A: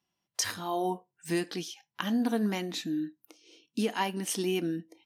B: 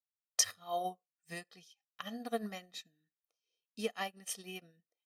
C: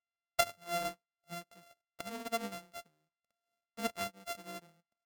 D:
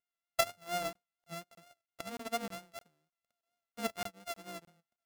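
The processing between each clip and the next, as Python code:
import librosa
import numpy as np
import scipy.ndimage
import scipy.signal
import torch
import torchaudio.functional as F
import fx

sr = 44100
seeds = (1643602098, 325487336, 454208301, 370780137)

y1 = fx.low_shelf(x, sr, hz=270.0, db=-5.5)
y1 = y1 + 0.87 * np.pad(y1, (int(1.6 * sr / 1000.0), 0))[:len(y1)]
y1 = fx.upward_expand(y1, sr, threshold_db=-45.0, expansion=2.5)
y2 = np.r_[np.sort(y1[:len(y1) // 64 * 64].reshape(-1, 64), axis=1).ravel(), y1[len(y1) // 64 * 64:]]
y3 = fx.vibrato(y2, sr, rate_hz=4.3, depth_cents=40.0)
y3 = fx.buffer_crackle(y3, sr, first_s=0.93, period_s=0.31, block=1024, kind='zero')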